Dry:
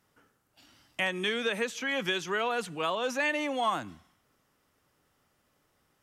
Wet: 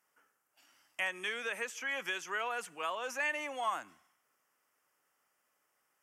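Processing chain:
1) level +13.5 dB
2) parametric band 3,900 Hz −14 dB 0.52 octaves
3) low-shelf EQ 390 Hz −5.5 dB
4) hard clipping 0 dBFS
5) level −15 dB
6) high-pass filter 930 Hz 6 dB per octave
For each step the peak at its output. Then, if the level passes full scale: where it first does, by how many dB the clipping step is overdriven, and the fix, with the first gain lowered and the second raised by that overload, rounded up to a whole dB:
−3.0, −4.0, −5.0, −5.0, −20.0, −21.0 dBFS
no step passes full scale

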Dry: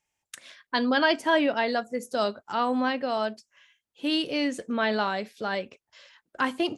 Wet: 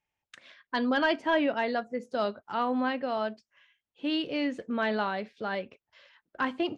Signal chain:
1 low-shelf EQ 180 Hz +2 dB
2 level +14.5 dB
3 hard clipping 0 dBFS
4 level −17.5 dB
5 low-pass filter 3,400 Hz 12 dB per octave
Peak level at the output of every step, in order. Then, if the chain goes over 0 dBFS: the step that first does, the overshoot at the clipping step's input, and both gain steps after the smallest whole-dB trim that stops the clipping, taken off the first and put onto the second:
−9.5, +5.0, 0.0, −17.5, −17.0 dBFS
step 2, 5.0 dB
step 2 +9.5 dB, step 4 −12.5 dB

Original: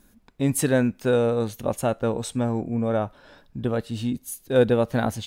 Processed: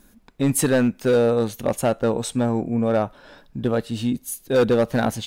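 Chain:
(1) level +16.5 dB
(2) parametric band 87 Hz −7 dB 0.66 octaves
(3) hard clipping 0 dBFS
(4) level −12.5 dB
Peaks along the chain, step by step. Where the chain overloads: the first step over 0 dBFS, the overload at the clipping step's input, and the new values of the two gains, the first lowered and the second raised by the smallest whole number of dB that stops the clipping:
+9.5, +9.0, 0.0, −12.5 dBFS
step 1, 9.0 dB
step 1 +7.5 dB, step 4 −3.5 dB

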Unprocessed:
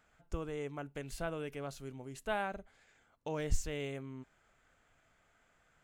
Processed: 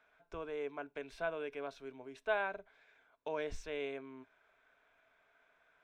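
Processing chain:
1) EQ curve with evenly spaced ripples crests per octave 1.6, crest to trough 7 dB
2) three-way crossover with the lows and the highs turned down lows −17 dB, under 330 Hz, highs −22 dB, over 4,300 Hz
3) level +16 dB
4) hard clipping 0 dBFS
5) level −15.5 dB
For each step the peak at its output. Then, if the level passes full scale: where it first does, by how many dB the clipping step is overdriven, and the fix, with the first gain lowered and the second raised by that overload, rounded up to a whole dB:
−16.5, −20.5, −4.5, −4.5, −20.0 dBFS
no step passes full scale

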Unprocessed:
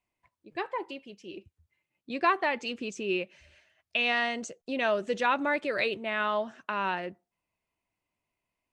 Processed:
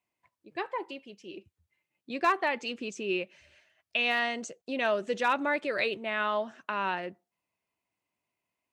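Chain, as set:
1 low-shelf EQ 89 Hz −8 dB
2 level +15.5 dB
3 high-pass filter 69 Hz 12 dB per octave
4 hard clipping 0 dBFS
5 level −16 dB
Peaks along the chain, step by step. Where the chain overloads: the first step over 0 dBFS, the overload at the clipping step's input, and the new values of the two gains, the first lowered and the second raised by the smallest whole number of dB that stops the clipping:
−13.0, +2.5, +3.0, 0.0, −16.0 dBFS
step 2, 3.0 dB
step 2 +12.5 dB, step 5 −13 dB

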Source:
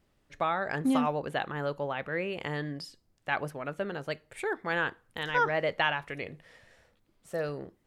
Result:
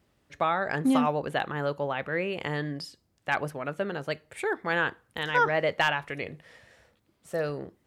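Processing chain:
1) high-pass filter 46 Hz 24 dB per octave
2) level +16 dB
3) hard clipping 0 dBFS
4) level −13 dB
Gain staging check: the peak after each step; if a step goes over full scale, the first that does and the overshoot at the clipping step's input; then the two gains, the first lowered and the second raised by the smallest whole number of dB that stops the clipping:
−12.0, +4.0, 0.0, −13.0 dBFS
step 2, 4.0 dB
step 2 +12 dB, step 4 −9 dB

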